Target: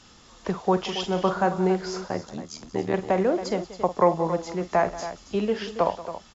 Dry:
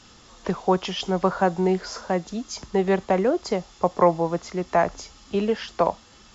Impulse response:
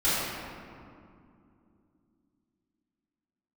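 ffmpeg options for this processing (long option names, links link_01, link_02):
-filter_complex "[0:a]asettb=1/sr,asplit=3[link_01][link_02][link_03];[link_01]atrim=end=0.834[link_04];[link_02]atrim=start=0.83:end=1.49,asetpts=PTS-STARTPTS,afade=type=in:duration=0.004:curve=qsin,afade=type=out:start_time=0.656:duration=0.004:curve=qsin,asplit=2[link_05][link_06];[link_06]adelay=40,volume=-8.5dB[link_07];[link_05][link_07]amix=inputs=2:normalize=0,atrim=end_sample=29106[link_08];[link_03]atrim=start=1.486[link_09];[link_04][link_08]acrossfade=duration=0.004:curve1=hsin:curve2=qsin[link_10];[link_10][link_09]acrossfade=duration=0.004:curve1=qsin:curve2=hsin,asettb=1/sr,asplit=3[link_11][link_12][link_13];[link_11]atrim=end=2.084[link_14];[link_12]atrim=start=2.08:end=2.94,asetpts=PTS-STARTPTS,afade=type=in:duration=0.004:curve=qsin,afade=type=out:start_time=0.856:duration=0.004:curve=qsin,tremolo=f=78:d=0.974[link_15];[link_13]atrim=start=2.936[link_16];[link_14][link_15]acrossfade=duration=0.004:curve1=hsin:curve2=qsin[link_17];[link_17][link_16]acrossfade=duration=0.004:curve1=qsin:curve2=hsin,aecho=1:1:49|182|276:0.2|0.15|0.251,volume=-2dB"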